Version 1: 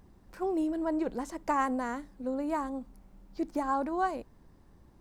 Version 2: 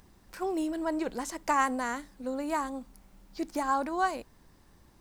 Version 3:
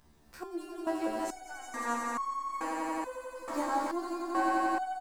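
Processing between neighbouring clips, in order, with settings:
tilt shelf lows -6 dB, about 1.3 kHz; trim +4 dB
doubling 18 ms -12 dB; echo with a slow build-up 88 ms, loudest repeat 5, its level -4 dB; resonator arpeggio 2.3 Hz 74–1100 Hz; trim +4 dB

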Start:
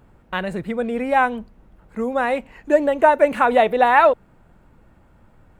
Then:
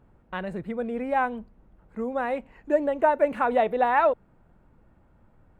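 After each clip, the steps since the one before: treble shelf 2.4 kHz -9.5 dB; trim -6 dB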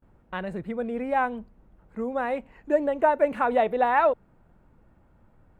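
gate with hold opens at -52 dBFS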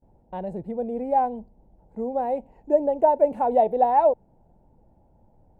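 FFT filter 330 Hz 0 dB, 870 Hz +5 dB, 1.2 kHz -19 dB, 3.6 kHz -13 dB, 5.4 kHz -7 dB

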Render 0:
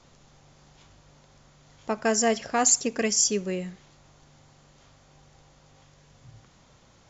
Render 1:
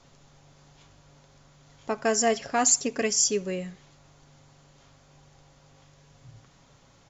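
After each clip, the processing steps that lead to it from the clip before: comb 7.2 ms, depth 33%; trim -1 dB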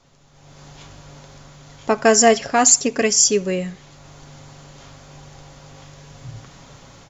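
level rider gain up to 14 dB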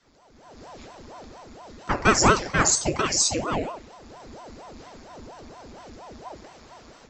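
reverberation RT60 0.40 s, pre-delay 3 ms, DRR 2.5 dB; ring modulator with a swept carrier 480 Hz, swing 85%, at 4.3 Hz; trim -6 dB

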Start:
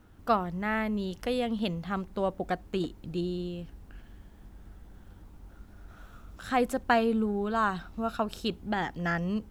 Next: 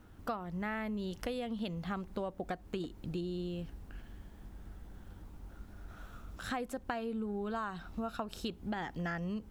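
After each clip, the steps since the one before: compression 10:1, threshold -34 dBFS, peak gain reduction 15.5 dB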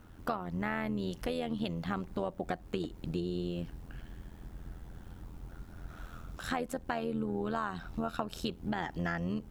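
AM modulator 84 Hz, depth 55%; trim +6 dB

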